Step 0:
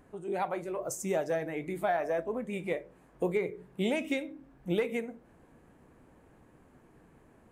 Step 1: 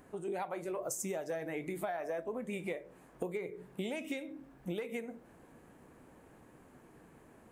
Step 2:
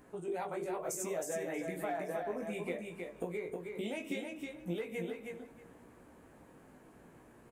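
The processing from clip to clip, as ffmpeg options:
-af "highshelf=f=6500:g=5,acompressor=threshold=0.0158:ratio=10,lowshelf=f=100:g=-7.5,volume=1.26"
-filter_complex "[0:a]flanger=delay=16.5:depth=2.9:speed=0.68,asplit=2[s0][s1];[s1]aecho=0:1:316|632|948:0.596|0.0953|0.0152[s2];[s0][s2]amix=inputs=2:normalize=0,volume=1.26"

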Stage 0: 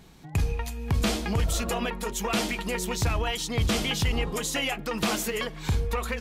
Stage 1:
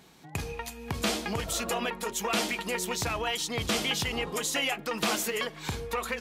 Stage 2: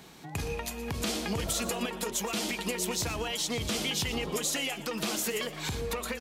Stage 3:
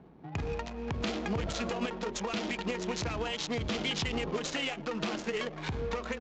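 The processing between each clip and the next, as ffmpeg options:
-af "highpass=f=310:p=1"
-filter_complex "[0:a]alimiter=level_in=1.06:limit=0.0631:level=0:latency=1:release=189,volume=0.944,acrossover=split=450|3000[s0][s1][s2];[s1]acompressor=threshold=0.00794:ratio=6[s3];[s0][s3][s2]amix=inputs=3:normalize=0,asplit=5[s4][s5][s6][s7][s8];[s5]adelay=118,afreqshift=140,volume=0.178[s9];[s6]adelay=236,afreqshift=280,volume=0.075[s10];[s7]adelay=354,afreqshift=420,volume=0.0313[s11];[s8]adelay=472,afreqshift=560,volume=0.0132[s12];[s4][s9][s10][s11][s12]amix=inputs=5:normalize=0,volume=1.78"
-af "adynamicsmooth=sensitivity=7.5:basefreq=500,aresample=16000,aresample=44100"

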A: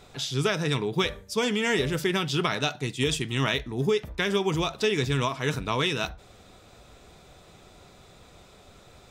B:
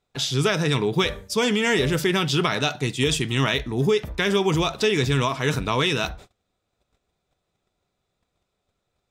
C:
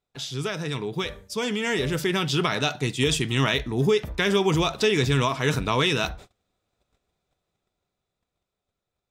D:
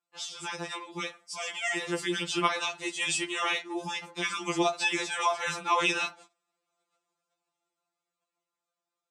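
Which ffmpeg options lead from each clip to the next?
-filter_complex "[0:a]agate=range=0.0282:threshold=0.00501:ratio=16:detection=peak,asplit=2[s0][s1];[s1]alimiter=limit=0.0944:level=0:latency=1:release=27,volume=1[s2];[s0][s2]amix=inputs=2:normalize=0"
-af "dynaudnorm=f=230:g=17:m=3.76,volume=0.398"
-af "highpass=410,equalizer=f=570:t=q:w=4:g=-6,equalizer=f=810:t=q:w=4:g=4,equalizer=f=1200:t=q:w=4:g=4,equalizer=f=1800:t=q:w=4:g=-4,equalizer=f=3700:t=q:w=4:g=-5,equalizer=f=8100:t=q:w=4:g=5,lowpass=f=9400:w=0.5412,lowpass=f=9400:w=1.3066,afftfilt=real='re*2.83*eq(mod(b,8),0)':imag='im*2.83*eq(mod(b,8),0)':win_size=2048:overlap=0.75"

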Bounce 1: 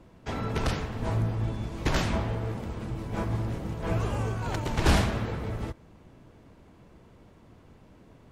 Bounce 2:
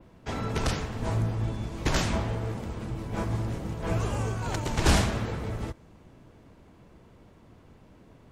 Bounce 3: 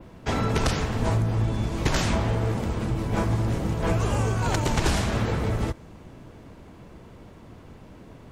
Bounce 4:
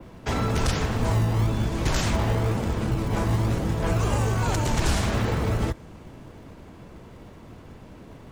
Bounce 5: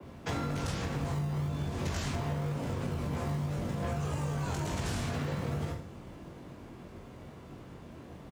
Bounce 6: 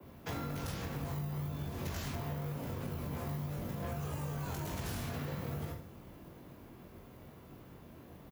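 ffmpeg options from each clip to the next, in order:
-af "adynamicequalizer=threshold=0.00178:dfrequency=7300:dqfactor=0.95:tfrequency=7300:tqfactor=0.95:attack=5:release=100:ratio=0.375:range=3:mode=boostabove:tftype=bell"
-af "acompressor=threshold=0.0447:ratio=12,volume=2.51"
-filter_complex "[0:a]acrossover=split=120|5500[s0][s1][s2];[s0]acrusher=samples=36:mix=1:aa=0.000001:lfo=1:lforange=21.6:lforate=1[s3];[s1]alimiter=limit=0.0944:level=0:latency=1:release=22[s4];[s3][s4][s2]amix=inputs=3:normalize=0,volume=1.19"
-af "aecho=1:1:20|44|72.8|107.4|148.8:0.631|0.398|0.251|0.158|0.1,afreqshift=35,acompressor=threshold=0.0562:ratio=6,volume=0.531"
-af "aexciter=amount=5.4:drive=6.3:freq=11000,volume=0.531"

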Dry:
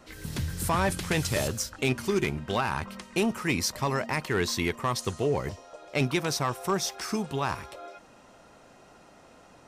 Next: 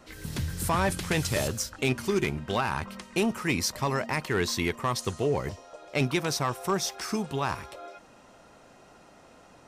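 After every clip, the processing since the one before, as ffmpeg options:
-af anull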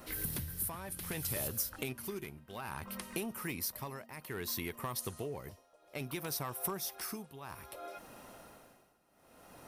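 -af "tremolo=f=0.61:d=0.91,acompressor=threshold=0.0112:ratio=5,aexciter=amount=9.6:drive=2.7:freq=9900,volume=1.12"

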